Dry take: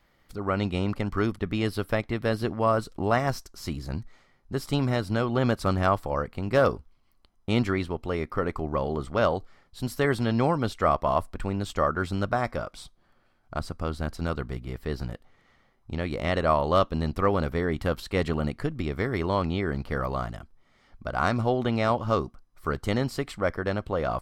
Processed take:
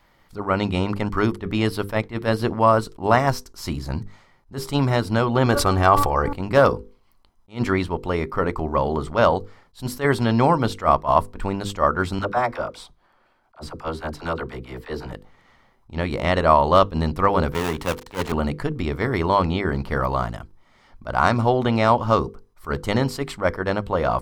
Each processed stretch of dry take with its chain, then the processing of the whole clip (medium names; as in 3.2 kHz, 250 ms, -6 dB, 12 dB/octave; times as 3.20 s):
5.46–6.33 s: comb 2.6 ms, depth 38% + de-hum 286.6 Hz, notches 5 + decay stretcher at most 48 dB/s
12.19–15.13 s: tone controls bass -9 dB, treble -5 dB + phase dispersion lows, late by 47 ms, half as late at 510 Hz
17.54–18.32 s: dead-time distortion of 0.28 ms + bass shelf 390 Hz -6 dB + three bands compressed up and down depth 40%
whole clip: peaking EQ 940 Hz +6.5 dB 0.3 oct; hum notches 50/100/150/200/250/300/350/400/450/500 Hz; attacks held to a fixed rise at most 270 dB/s; trim +6 dB